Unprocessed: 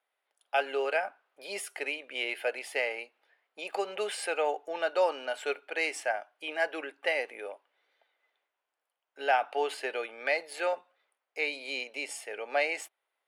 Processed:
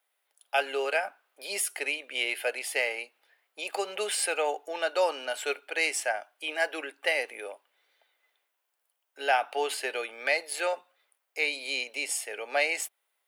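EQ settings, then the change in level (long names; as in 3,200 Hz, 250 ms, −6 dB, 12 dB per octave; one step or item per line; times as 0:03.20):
high-pass filter 180 Hz 24 dB per octave
high-shelf EQ 2,800 Hz +8 dB
high-shelf EQ 11,000 Hz +9 dB
0.0 dB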